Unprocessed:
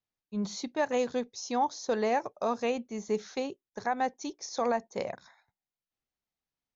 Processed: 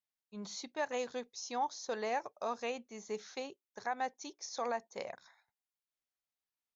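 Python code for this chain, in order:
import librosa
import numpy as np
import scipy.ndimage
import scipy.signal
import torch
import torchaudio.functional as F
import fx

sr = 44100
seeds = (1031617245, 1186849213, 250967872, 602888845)

y = fx.low_shelf(x, sr, hz=400.0, db=-12.0)
y = y * 10.0 ** (-4.0 / 20.0)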